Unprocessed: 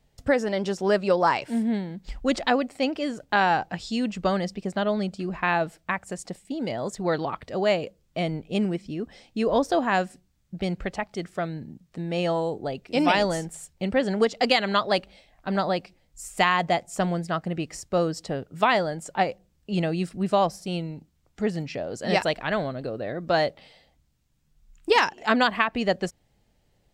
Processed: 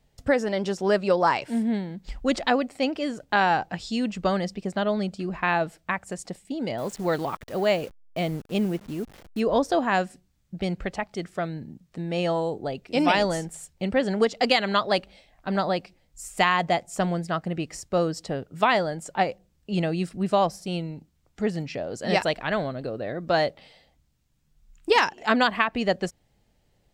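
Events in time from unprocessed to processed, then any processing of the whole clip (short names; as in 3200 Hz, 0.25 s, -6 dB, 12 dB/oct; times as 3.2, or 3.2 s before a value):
6.78–9.4 level-crossing sampler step -42.5 dBFS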